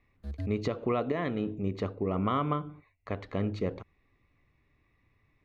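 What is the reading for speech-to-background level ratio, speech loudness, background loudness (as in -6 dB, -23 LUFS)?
8.0 dB, -32.5 LUFS, -40.5 LUFS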